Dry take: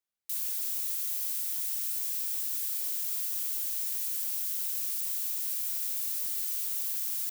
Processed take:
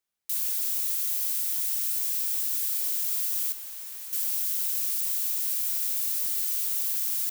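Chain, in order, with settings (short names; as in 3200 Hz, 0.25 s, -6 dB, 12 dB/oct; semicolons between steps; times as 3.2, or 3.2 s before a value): 3.52–4.13 high shelf 2200 Hz -11 dB; gain +4.5 dB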